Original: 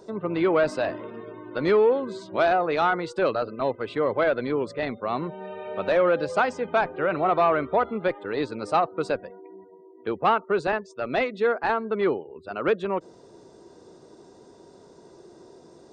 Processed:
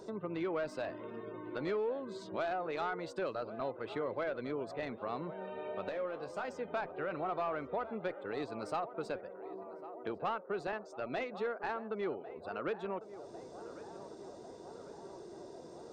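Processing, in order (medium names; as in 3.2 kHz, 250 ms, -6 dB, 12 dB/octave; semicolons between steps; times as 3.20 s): tracing distortion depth 0.02 ms; compression 2:1, threshold -43 dBFS, peak gain reduction 14.5 dB; 5.89–6.45 s: feedback comb 68 Hz, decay 0.18 s, harmonics all, mix 70%; band-passed feedback delay 1100 ms, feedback 78%, band-pass 620 Hz, level -12.5 dB; trim -1.5 dB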